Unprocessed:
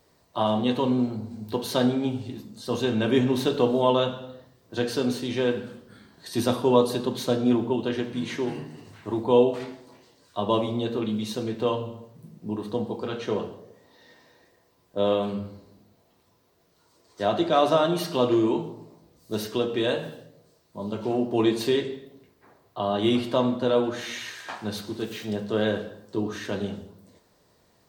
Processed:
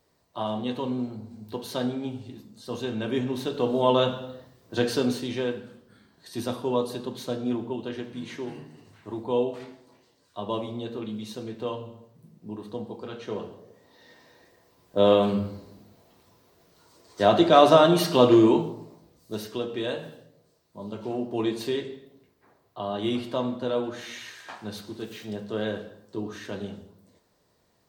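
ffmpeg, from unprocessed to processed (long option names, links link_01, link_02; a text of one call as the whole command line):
ffmpeg -i in.wav -af "volume=13.5dB,afade=type=in:start_time=3.53:duration=0.55:silence=0.398107,afade=type=out:start_time=4.87:duration=0.72:silence=0.375837,afade=type=in:start_time=13.25:duration=1.99:silence=0.266073,afade=type=out:start_time=18.44:duration=0.97:silence=0.316228" out.wav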